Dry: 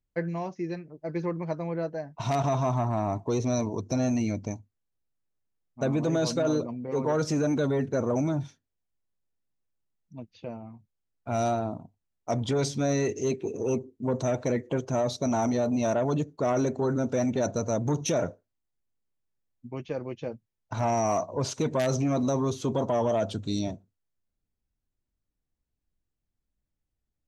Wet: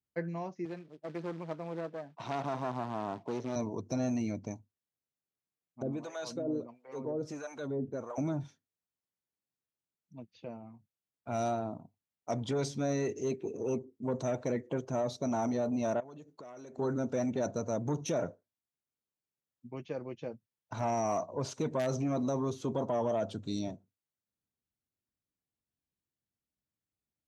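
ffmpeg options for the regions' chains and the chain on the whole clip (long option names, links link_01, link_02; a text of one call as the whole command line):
ffmpeg -i in.wav -filter_complex "[0:a]asettb=1/sr,asplit=3[link_01][link_02][link_03];[link_01]atrim=end=0.654[link_04];[link_02]atrim=start=0.65:end=3.56,asetpts=PTS-STARTPTS,afade=type=in:duration=0.004:curve=qsin,afade=type=out:start_time=2.906:duration=0.004:curve=qsin,acrusher=bits=4:mode=log:mix=0:aa=0.000001,aeval=exprs='clip(val(0),-1,0.0168)':channel_layout=same,highpass=160,lowpass=4300[link_05];[link_03]atrim=start=3.556[link_06];[link_04][link_05]acrossfade=duration=0.004:curve1=hsin:curve2=qsin[link_07];[link_07][link_06]acrossfade=duration=0.004:curve1=qsin:curve2=hsin,asettb=1/sr,asplit=3[link_08][link_09][link_10];[link_08]atrim=end=5.824[link_11];[link_09]atrim=start=5.82:end=8.18,asetpts=PTS-STARTPTS,afade=type=in:duration=0.004:curve=qsin,afade=type=out:start_time=2.356:duration=0.004:curve=qsin,equalizer=frequency=160:width_type=o:width=0.24:gain=-8.5,acrossover=split=630[link_12][link_13];[link_12]aeval=exprs='val(0)*(1-1/2+1/2*cos(2*PI*1.5*n/s))':channel_layout=same[link_14];[link_13]aeval=exprs='val(0)*(1-1/2-1/2*cos(2*PI*1.5*n/s))':channel_layout=same[link_15];[link_14][link_15]amix=inputs=2:normalize=0[link_16];[link_10]atrim=start=8.176[link_17];[link_11][link_16]acrossfade=duration=0.004:curve1=hsin:curve2=qsin[link_18];[link_18][link_17]acrossfade=duration=0.004:curve1=qsin:curve2=hsin,asettb=1/sr,asplit=3[link_19][link_20][link_21];[link_19]atrim=end=16.004[link_22];[link_20]atrim=start=16:end=16.78,asetpts=PTS-STARTPTS,afade=type=in:duration=0.004:curve=qsin,afade=type=out:start_time=0.776:duration=0.004:curve=qsin,lowshelf=frequency=250:gain=-10,acompressor=threshold=-39dB:ratio=20:attack=3.2:release=140:knee=1:detection=peak[link_23];[link_21]atrim=start=16.776[link_24];[link_22][link_23]acrossfade=duration=0.004:curve1=hsin:curve2=qsin[link_25];[link_25][link_24]acrossfade=duration=0.004:curve1=qsin:curve2=hsin,highpass=110,adynamicequalizer=threshold=0.00501:dfrequency=1900:dqfactor=0.7:tfrequency=1900:tqfactor=0.7:attack=5:release=100:ratio=0.375:range=2:mode=cutabove:tftype=highshelf,volume=-5.5dB" out.wav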